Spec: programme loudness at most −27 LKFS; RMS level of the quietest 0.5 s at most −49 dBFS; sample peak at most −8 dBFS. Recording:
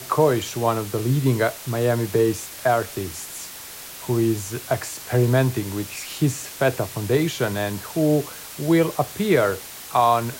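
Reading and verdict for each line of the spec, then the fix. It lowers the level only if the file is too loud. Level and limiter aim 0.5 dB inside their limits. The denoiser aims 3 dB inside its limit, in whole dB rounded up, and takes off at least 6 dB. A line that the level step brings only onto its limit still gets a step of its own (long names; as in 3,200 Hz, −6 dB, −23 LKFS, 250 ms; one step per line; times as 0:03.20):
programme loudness −22.5 LKFS: out of spec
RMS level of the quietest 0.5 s −38 dBFS: out of spec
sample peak −5.5 dBFS: out of spec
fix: broadband denoise 9 dB, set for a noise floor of −38 dBFS
level −5 dB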